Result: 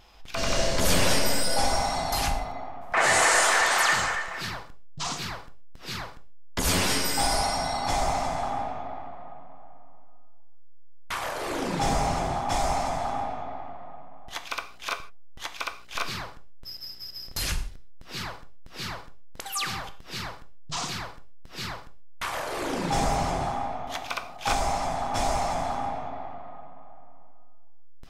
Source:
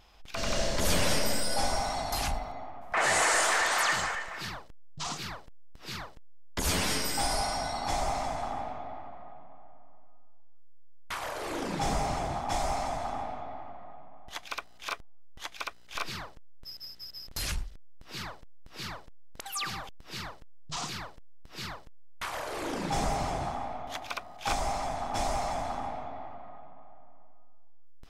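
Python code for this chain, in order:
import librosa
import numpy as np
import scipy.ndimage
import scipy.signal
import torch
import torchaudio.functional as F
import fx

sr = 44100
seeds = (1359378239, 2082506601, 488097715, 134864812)

y = fx.rev_gated(x, sr, seeds[0], gate_ms=180, shape='falling', drr_db=8.0)
y = y * librosa.db_to_amplitude(4.0)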